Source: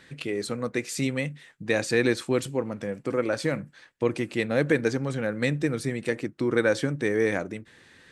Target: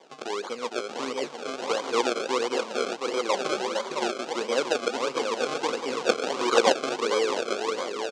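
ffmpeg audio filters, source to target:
ffmpeg -i in.wav -filter_complex "[0:a]aecho=1:1:460|828|1122|1358|1546:0.631|0.398|0.251|0.158|0.1,asplit=2[link_01][link_02];[link_02]acompressor=threshold=-37dB:ratio=6,volume=0dB[link_03];[link_01][link_03]amix=inputs=2:normalize=0,asettb=1/sr,asplit=3[link_04][link_05][link_06];[link_04]atrim=end=3.294[link_07];[link_05]atrim=start=3.29:end=4.12,asetpts=PTS-STARTPTS,afade=type=in:duration=0.004:curve=qsin,afade=type=out:start_time=0.826:duration=0.004:curve=qsin,aecho=1:1:5.2:0.9,atrim=end_sample=36603[link_08];[link_06]atrim=start=4.116[link_09];[link_07][link_08]acrossfade=duration=0.004:curve1=hsin:curve2=qsin[link_10];[link_10][link_09]acrossfade=duration=0.004:curve1=qsin:curve2=hsin,asettb=1/sr,asplit=3[link_11][link_12][link_13];[link_11]atrim=end=6.004[link_14];[link_12]atrim=start=6:end=6.79,asetpts=PTS-STARTPTS,afade=type=in:duration=0.004:curve=qsin,afade=type=out:start_time=0.786:duration=0.004:curve=qsin,equalizer=frequency=1200:width=0.8:gain=12.5[link_15];[link_13]atrim=start=6.786[link_16];[link_14][link_15]acrossfade=duration=0.004:curve1=hsin:curve2=qsin[link_17];[link_17][link_16]acrossfade=duration=0.004:curve1=qsin:curve2=hsin,acrusher=samples=32:mix=1:aa=0.000001:lfo=1:lforange=32:lforate=1.5,highpass=frequency=310:width=0.5412,highpass=frequency=310:width=1.3066,equalizer=frequency=310:width_type=q:width=4:gain=-9,equalizer=frequency=630:width_type=q:width=4:gain=-3,equalizer=frequency=1100:width_type=q:width=4:gain=4,equalizer=frequency=1800:width_type=q:width=4:gain=-9,lowpass=frequency=7100:width=0.5412,lowpass=frequency=7100:width=1.3066,volume=-1dB" out.wav

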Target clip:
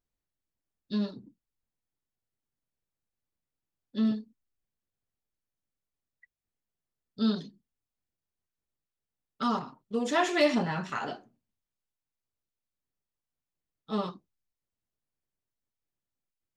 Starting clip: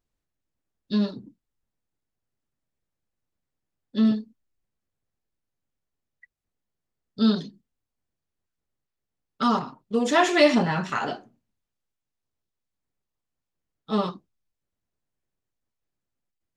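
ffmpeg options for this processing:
ffmpeg -i in.wav -af "asoftclip=type=hard:threshold=-8dB,volume=-6.5dB" out.wav

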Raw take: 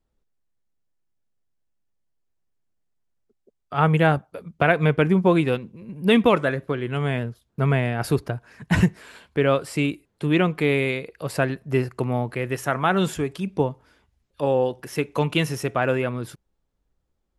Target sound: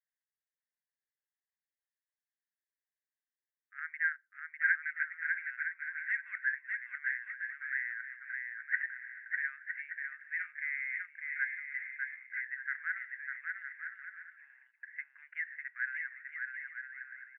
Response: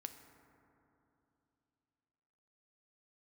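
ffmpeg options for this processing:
-af "asuperpass=centerf=1800:order=8:qfactor=3.2,aecho=1:1:600|960|1176|1306|1383:0.631|0.398|0.251|0.158|0.1,volume=-2.5dB"

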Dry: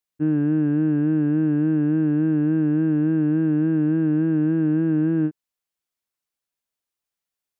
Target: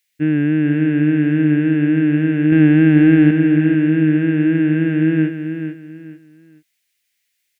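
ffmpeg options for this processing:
ffmpeg -i in.wav -filter_complex "[0:a]highshelf=frequency=1500:width_type=q:width=3:gain=10.5,asettb=1/sr,asplit=3[link_01][link_02][link_03];[link_01]atrim=end=2.524[link_04];[link_02]atrim=start=2.52:end=3.31,asetpts=PTS-STARTPTS,afade=type=in:duration=0.004:curve=qsin,afade=type=out:start_time=0.786:duration=0.004:curve=qsin,acontrast=36[link_05];[link_03]atrim=start=3.306[link_06];[link_04][link_05]acrossfade=duration=0.004:curve1=hsin:curve2=qsin[link_07];[link_07][link_06]acrossfade=duration=0.004:curve1=qsin:curve2=hsin,asplit=2[link_08][link_09];[link_09]aecho=0:1:439|878|1317:0.376|0.105|0.0295[link_10];[link_08][link_10]amix=inputs=2:normalize=0,volume=4.5dB" out.wav

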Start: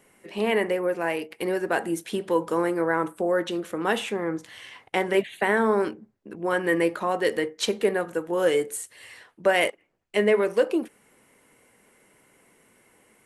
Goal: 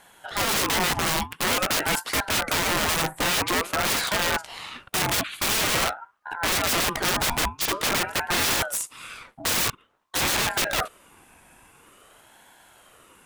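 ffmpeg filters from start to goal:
ffmpeg -i in.wav -af "aeval=exprs='(mod(16.8*val(0)+1,2)-1)/16.8':channel_layout=same,aeval=exprs='val(0)*sin(2*PI*850*n/s+850*0.45/0.48*sin(2*PI*0.48*n/s))':channel_layout=same,volume=9dB" out.wav

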